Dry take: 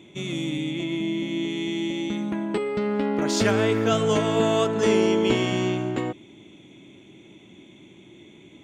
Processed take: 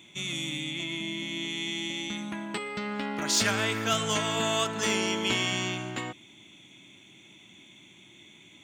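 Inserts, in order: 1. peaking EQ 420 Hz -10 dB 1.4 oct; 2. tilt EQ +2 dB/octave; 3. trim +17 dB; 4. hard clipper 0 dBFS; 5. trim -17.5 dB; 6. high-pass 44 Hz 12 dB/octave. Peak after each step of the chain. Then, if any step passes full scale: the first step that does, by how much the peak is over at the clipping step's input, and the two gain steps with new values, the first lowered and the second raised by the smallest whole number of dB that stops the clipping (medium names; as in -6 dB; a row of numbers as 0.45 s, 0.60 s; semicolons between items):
-10.0 dBFS, -10.0 dBFS, +7.0 dBFS, 0.0 dBFS, -17.5 dBFS, -16.0 dBFS; step 3, 7.0 dB; step 3 +10 dB, step 5 -10.5 dB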